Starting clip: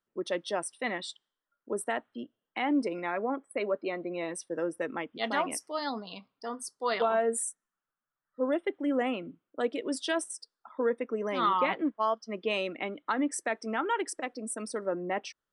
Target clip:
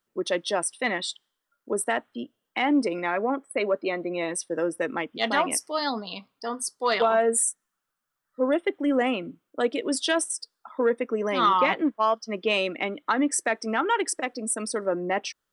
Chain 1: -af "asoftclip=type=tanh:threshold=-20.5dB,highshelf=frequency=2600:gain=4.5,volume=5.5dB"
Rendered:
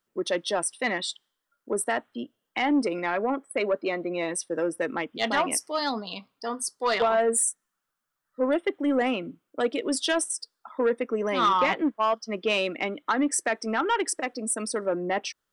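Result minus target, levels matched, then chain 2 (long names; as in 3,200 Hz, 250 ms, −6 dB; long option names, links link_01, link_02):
soft clipping: distortion +12 dB
-af "asoftclip=type=tanh:threshold=-13.5dB,highshelf=frequency=2600:gain=4.5,volume=5.5dB"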